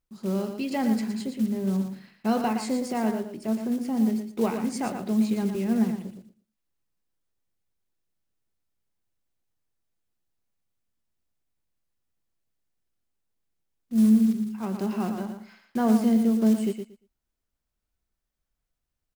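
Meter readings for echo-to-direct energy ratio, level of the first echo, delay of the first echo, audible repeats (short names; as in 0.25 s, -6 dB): -7.5 dB, -7.5 dB, 0.116 s, 2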